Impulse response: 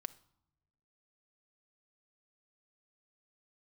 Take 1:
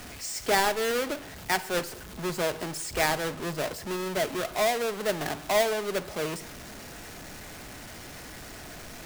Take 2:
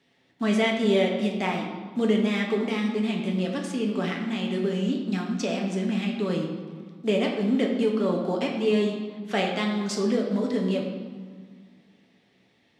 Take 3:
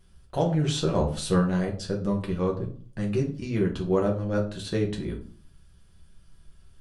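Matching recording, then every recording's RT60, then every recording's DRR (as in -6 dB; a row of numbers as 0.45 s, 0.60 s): 1; no single decay rate, 1.8 s, 0.45 s; 12.5 dB, -0.5 dB, -1.0 dB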